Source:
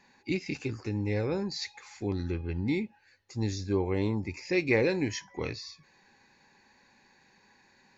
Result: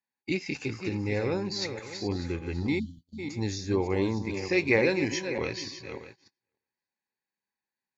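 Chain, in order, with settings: regenerating reverse delay 0.299 s, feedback 42%, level -8 dB; high shelf 3000 Hz -5.5 dB; spectral delete 2.79–3.19, 320–2900 Hz; tilt +1.5 dB/oct; gate -50 dBFS, range -35 dB; gain +3.5 dB

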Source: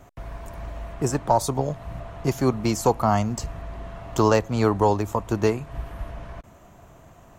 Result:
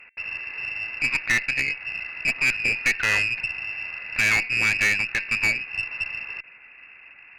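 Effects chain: de-hum 223.2 Hz, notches 5; inverted band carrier 2700 Hz; tube stage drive 18 dB, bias 0.45; gain +3 dB

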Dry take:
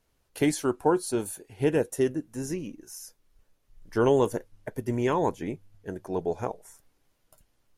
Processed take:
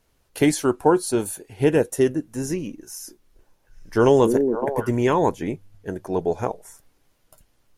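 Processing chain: 2.8–4.9 delay with a stepping band-pass 0.28 s, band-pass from 280 Hz, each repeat 1.4 oct, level -1 dB; gain +6 dB

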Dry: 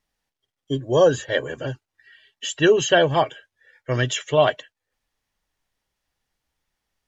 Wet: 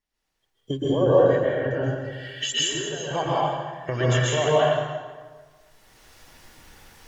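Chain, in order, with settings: bin magnitudes rounded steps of 15 dB; recorder AGC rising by 20 dB/s; 0.86–1.71 LPF 1700 Hz 12 dB/oct; 2.53–3.11 compressor 6:1, threshold -29 dBFS, peak gain reduction 16.5 dB; plate-style reverb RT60 1.5 s, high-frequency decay 0.7×, pre-delay 0.11 s, DRR -7.5 dB; gain -8.5 dB

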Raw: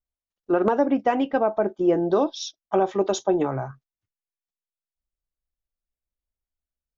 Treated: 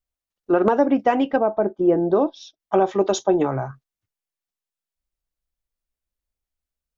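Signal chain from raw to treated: 1.36–2.6 LPF 1100 Hz 6 dB/oct; gain +3 dB

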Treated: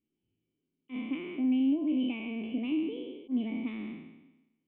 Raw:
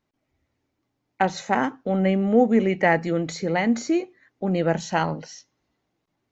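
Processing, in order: spectral trails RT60 1.38 s; compressor, threshold -19 dBFS, peak gain reduction 8 dB; auto swell 0.112 s; speed mistake 33 rpm record played at 45 rpm; vocal tract filter i

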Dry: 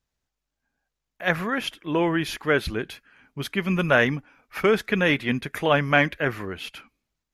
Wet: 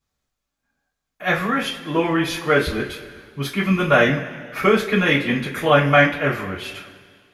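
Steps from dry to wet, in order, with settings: two-slope reverb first 0.26 s, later 2 s, from -19 dB, DRR -7 dB; gain -3 dB

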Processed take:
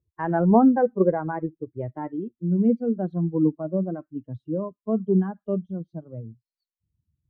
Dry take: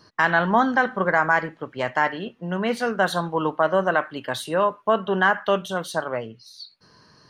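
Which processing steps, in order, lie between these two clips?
per-bin expansion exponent 2; low-pass sweep 500 Hz -> 250 Hz, 0.12–3.58; gain +7 dB

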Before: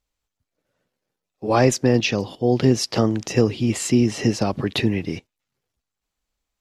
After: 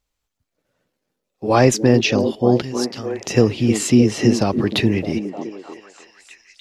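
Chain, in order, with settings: 2.62–3.23 passive tone stack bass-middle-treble 5-5-5; delay with a stepping band-pass 0.306 s, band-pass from 280 Hz, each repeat 0.7 oct, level -5 dB; gain +3 dB

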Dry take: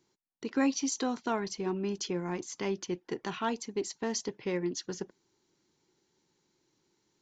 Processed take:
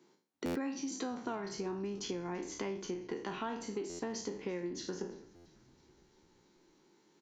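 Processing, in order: spectral trails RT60 0.43 s; HPF 170 Hz 24 dB/oct; high shelf 3100 Hz -9.5 dB; compressor 5:1, threshold -45 dBFS, peak gain reduction 18.5 dB; frequency-shifting echo 0.335 s, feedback 65%, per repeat -73 Hz, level -24 dB; stuck buffer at 0.45/3.89/5.35, samples 512, times 8; gain +7.5 dB

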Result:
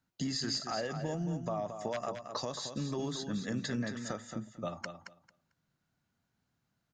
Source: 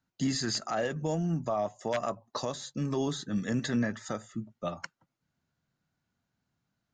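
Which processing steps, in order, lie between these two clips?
dynamic EQ 4900 Hz, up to +6 dB, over -52 dBFS, Q 3.9; compressor 2.5:1, threshold -35 dBFS, peak gain reduction 7.5 dB; on a send: feedback echo 0.223 s, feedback 17%, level -8 dB

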